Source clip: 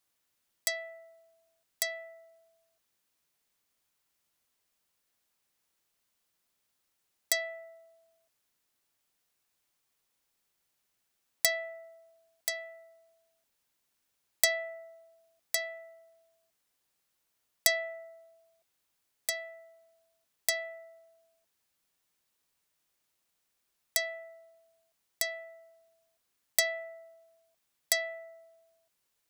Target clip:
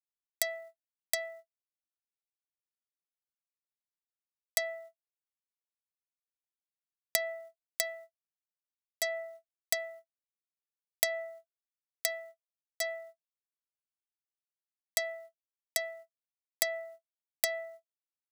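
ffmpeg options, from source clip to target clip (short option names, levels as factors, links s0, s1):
-filter_complex "[0:a]agate=range=0.00224:threshold=0.00158:ratio=16:detection=peak,acrossover=split=1400|4300[s0][s1][s2];[s0]acompressor=threshold=0.0141:ratio=4[s3];[s1]acompressor=threshold=0.00794:ratio=4[s4];[s2]acompressor=threshold=0.0224:ratio=4[s5];[s3][s4][s5]amix=inputs=3:normalize=0,atempo=1.6,volume=1.68"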